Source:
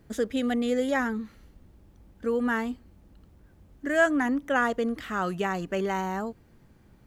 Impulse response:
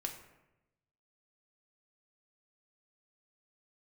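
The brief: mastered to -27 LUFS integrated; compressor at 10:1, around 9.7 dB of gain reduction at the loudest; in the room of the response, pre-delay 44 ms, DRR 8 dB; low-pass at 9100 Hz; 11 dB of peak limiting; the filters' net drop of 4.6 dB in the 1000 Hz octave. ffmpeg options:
-filter_complex "[0:a]lowpass=9.1k,equalizer=f=1k:t=o:g=-6.5,acompressor=threshold=-28dB:ratio=10,alimiter=level_in=7dB:limit=-24dB:level=0:latency=1,volume=-7dB,asplit=2[a][b];[1:a]atrim=start_sample=2205,adelay=44[c];[b][c]afir=irnorm=-1:irlink=0,volume=-7.5dB[d];[a][d]amix=inputs=2:normalize=0,volume=12.5dB"

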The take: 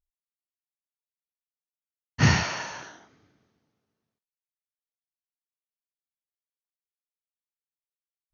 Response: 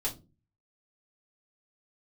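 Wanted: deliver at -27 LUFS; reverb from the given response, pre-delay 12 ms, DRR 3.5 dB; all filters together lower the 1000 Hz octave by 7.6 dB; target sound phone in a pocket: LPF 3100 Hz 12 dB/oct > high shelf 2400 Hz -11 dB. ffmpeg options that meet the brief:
-filter_complex "[0:a]equalizer=f=1k:t=o:g=-7.5,asplit=2[a][b];[1:a]atrim=start_sample=2205,adelay=12[c];[b][c]afir=irnorm=-1:irlink=0,volume=-7.5dB[d];[a][d]amix=inputs=2:normalize=0,lowpass=3.1k,highshelf=f=2.4k:g=-11,volume=-4dB"

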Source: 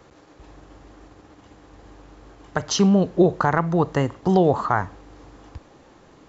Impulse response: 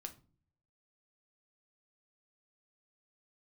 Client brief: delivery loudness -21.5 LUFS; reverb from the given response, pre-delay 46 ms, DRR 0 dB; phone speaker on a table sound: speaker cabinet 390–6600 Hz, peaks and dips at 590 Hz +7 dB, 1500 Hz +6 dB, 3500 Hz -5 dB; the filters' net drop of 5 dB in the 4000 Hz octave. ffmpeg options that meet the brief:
-filter_complex "[0:a]equalizer=f=4k:t=o:g=-4.5,asplit=2[a][b];[1:a]atrim=start_sample=2205,adelay=46[c];[b][c]afir=irnorm=-1:irlink=0,volume=4dB[d];[a][d]amix=inputs=2:normalize=0,highpass=f=390:w=0.5412,highpass=f=390:w=1.3066,equalizer=f=590:t=q:w=4:g=7,equalizer=f=1.5k:t=q:w=4:g=6,equalizer=f=3.5k:t=q:w=4:g=-5,lowpass=f=6.6k:w=0.5412,lowpass=f=6.6k:w=1.3066,volume=-2.5dB"

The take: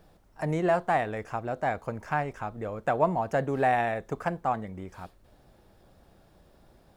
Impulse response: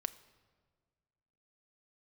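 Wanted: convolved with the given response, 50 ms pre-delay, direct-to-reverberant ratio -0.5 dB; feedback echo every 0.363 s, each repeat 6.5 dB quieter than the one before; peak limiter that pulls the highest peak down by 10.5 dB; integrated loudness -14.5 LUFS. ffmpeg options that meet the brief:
-filter_complex "[0:a]alimiter=limit=-22dB:level=0:latency=1,aecho=1:1:363|726|1089|1452|1815|2178:0.473|0.222|0.105|0.0491|0.0231|0.0109,asplit=2[a][b];[1:a]atrim=start_sample=2205,adelay=50[c];[b][c]afir=irnorm=-1:irlink=0,volume=1dB[d];[a][d]amix=inputs=2:normalize=0,volume=15dB"

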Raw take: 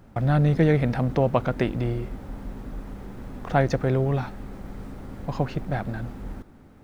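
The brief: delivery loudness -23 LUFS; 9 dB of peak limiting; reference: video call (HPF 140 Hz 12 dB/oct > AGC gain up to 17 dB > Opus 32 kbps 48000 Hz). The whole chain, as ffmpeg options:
-af "alimiter=limit=-16dB:level=0:latency=1,highpass=140,dynaudnorm=m=17dB,volume=6.5dB" -ar 48000 -c:a libopus -b:a 32k

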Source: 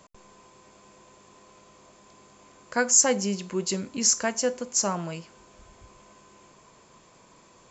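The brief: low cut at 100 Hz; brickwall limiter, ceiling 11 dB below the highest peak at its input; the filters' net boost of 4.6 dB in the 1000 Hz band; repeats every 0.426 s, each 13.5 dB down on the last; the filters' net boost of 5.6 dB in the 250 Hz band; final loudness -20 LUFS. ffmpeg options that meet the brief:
-af "highpass=100,equalizer=f=250:t=o:g=7,equalizer=f=1k:t=o:g=5.5,alimiter=limit=-17dB:level=0:latency=1,aecho=1:1:426|852:0.211|0.0444,volume=7.5dB"

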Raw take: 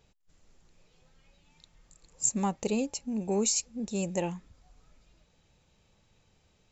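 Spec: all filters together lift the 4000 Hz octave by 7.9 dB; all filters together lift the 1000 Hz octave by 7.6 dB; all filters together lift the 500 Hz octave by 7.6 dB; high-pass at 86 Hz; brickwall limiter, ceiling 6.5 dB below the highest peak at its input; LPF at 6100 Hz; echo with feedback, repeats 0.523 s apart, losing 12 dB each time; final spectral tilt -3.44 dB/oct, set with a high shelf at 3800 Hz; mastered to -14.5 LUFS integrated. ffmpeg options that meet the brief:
-af "highpass=86,lowpass=6.1k,equalizer=f=500:t=o:g=8,equalizer=f=1k:t=o:g=6,highshelf=f=3.8k:g=7.5,equalizer=f=4k:t=o:g=6,alimiter=limit=-16dB:level=0:latency=1,aecho=1:1:523|1046|1569:0.251|0.0628|0.0157,volume=13.5dB"

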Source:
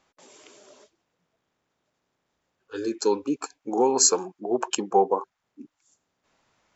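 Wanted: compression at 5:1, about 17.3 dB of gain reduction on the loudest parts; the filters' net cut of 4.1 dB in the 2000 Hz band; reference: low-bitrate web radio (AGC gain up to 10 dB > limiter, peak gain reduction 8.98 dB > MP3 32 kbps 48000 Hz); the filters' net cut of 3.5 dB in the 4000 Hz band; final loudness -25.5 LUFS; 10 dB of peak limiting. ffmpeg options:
-af "equalizer=f=2k:t=o:g=-5,equalizer=f=4k:t=o:g=-3.5,acompressor=threshold=-36dB:ratio=5,alimiter=level_in=6dB:limit=-24dB:level=0:latency=1,volume=-6dB,dynaudnorm=m=10dB,alimiter=level_in=15dB:limit=-24dB:level=0:latency=1,volume=-15dB,volume=24.5dB" -ar 48000 -c:a libmp3lame -b:a 32k

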